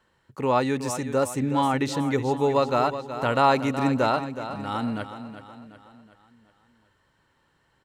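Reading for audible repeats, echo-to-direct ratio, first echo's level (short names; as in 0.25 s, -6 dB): 4, -10.0 dB, -11.0 dB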